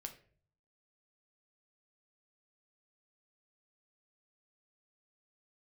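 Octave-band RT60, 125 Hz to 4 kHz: 0.90, 0.65, 0.55, 0.40, 0.45, 0.30 seconds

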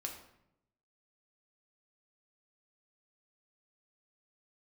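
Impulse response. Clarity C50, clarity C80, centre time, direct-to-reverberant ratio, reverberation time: 6.5 dB, 9.5 dB, 25 ms, 1.0 dB, 0.80 s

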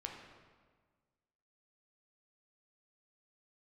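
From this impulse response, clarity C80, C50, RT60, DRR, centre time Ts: 5.5 dB, 3.5 dB, 1.5 s, 0.5 dB, 51 ms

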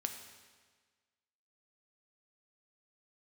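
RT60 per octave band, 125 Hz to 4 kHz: 1.5, 1.5, 1.5, 1.5, 1.5, 1.4 seconds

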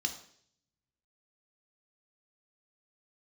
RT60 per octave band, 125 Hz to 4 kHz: 1.6, 0.70, 0.65, 0.55, 0.60, 0.70 seconds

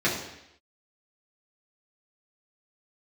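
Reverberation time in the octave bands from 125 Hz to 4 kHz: 0.75, 0.80, 0.80, 0.80, 0.90, 0.85 seconds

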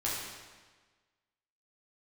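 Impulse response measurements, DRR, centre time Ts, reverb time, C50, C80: −7.0 dB, 88 ms, 1.4 s, −0.5 dB, 2.0 dB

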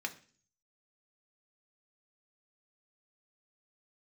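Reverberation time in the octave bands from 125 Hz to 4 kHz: 0.75, 0.60, 0.45, 0.40, 0.45, 0.55 seconds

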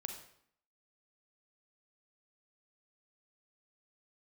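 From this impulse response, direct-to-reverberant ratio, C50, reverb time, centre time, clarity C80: 4.0 dB, 6.5 dB, 0.65 s, 23 ms, 9.5 dB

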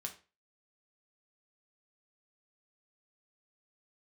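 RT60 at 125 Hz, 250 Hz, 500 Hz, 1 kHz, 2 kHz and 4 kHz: 0.35, 0.35, 0.35, 0.30, 0.30, 0.30 seconds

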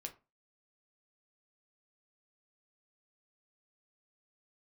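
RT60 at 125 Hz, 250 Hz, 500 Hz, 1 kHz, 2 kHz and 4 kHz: 0.30, 0.35, 0.30, 0.30, 0.25, 0.20 seconds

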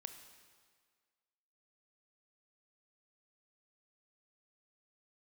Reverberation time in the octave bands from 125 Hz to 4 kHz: 1.5, 1.7, 1.8, 1.8, 1.7, 1.6 seconds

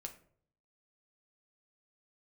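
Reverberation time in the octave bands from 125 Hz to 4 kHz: 0.90, 0.70, 0.65, 0.50, 0.40, 0.30 seconds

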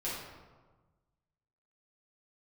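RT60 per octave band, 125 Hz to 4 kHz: 1.8, 1.5, 1.4, 1.3, 1.0, 0.75 seconds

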